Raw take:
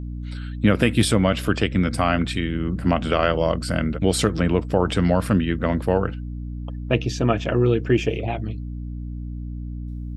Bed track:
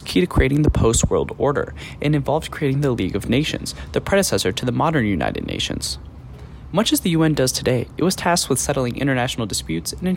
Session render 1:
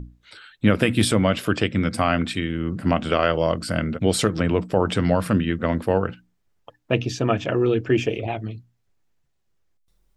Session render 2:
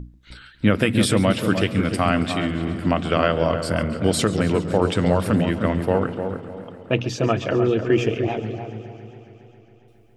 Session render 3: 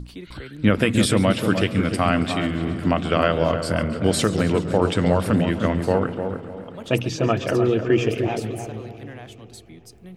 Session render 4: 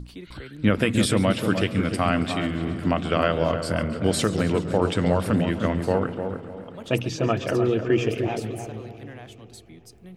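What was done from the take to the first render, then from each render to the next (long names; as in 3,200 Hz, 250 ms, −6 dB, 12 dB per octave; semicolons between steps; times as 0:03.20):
mains-hum notches 60/120/180/240/300 Hz
on a send: feedback echo with a low-pass in the loop 303 ms, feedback 32%, low-pass 1,000 Hz, level −6 dB; on the sum: feedback echo with a swinging delay time 137 ms, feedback 79%, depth 106 cents, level −17 dB
mix in bed track −21 dB
level −2.5 dB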